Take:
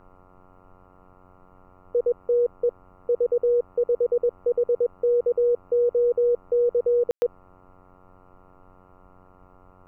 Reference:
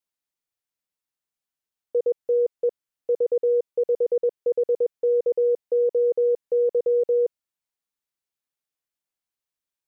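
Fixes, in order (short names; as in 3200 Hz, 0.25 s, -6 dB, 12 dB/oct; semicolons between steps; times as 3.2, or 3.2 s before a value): de-hum 92.2 Hz, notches 15; room tone fill 7.11–7.22; expander -46 dBFS, range -21 dB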